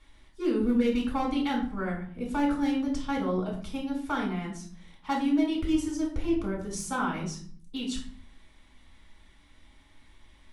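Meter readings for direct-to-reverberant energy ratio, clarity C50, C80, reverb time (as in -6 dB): -2.0 dB, 7.0 dB, 11.5 dB, 0.55 s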